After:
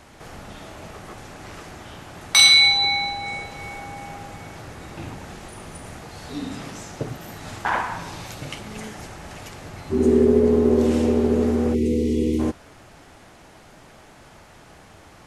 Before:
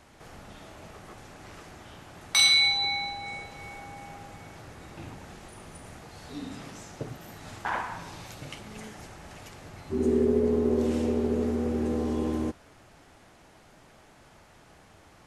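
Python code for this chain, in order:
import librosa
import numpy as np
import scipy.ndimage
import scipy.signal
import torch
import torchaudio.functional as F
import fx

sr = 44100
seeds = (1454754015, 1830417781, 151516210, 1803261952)

y = fx.spec_box(x, sr, start_s=11.74, length_s=0.65, low_hz=500.0, high_hz=1900.0, gain_db=-26)
y = y * librosa.db_to_amplitude(7.5)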